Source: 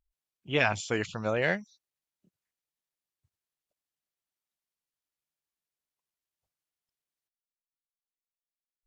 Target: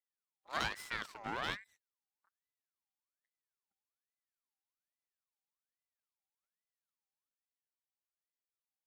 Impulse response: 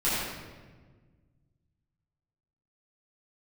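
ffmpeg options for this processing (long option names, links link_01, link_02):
-af "highpass=180,aeval=exprs='max(val(0),0)':channel_layout=same,aeval=exprs='val(0)*sin(2*PI*1400*n/s+1400*0.45/1.2*sin(2*PI*1.2*n/s))':channel_layout=same,volume=-4dB"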